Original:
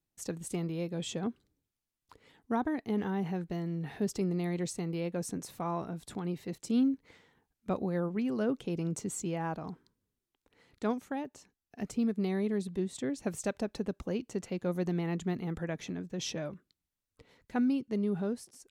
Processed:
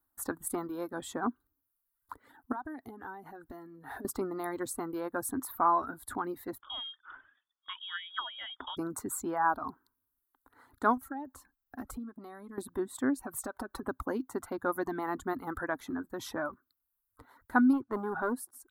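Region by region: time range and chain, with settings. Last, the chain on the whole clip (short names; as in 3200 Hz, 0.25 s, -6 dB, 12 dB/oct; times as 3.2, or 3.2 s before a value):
2.52–4.05 bell 1100 Hz -4.5 dB 0.28 oct + compressor 12:1, threshold -41 dBFS
6.61–8.77 dynamic EQ 1600 Hz, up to +6 dB, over -53 dBFS, Q 1.2 + compressor 2.5:1, threshold -32 dBFS + inverted band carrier 3500 Hz
10.97–12.58 low shelf 140 Hz +9.5 dB + comb 3.7 ms, depth 43% + compressor, threshold -40 dBFS
13.2–13.83 comb 5.3 ms, depth 53% + compressor 10:1, threshold -35 dBFS
17.73–18.35 tone controls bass -3 dB, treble -14 dB + sample leveller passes 1
whole clip: reverb removal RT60 0.78 s; EQ curve 110 Hz 0 dB, 180 Hz -17 dB, 260 Hz +5 dB, 480 Hz -5 dB, 1000 Hz +12 dB, 1500 Hz +12 dB, 2600 Hz -17 dB, 3800 Hz -5 dB, 5800 Hz -12 dB, 12000 Hz +12 dB; gain +2.5 dB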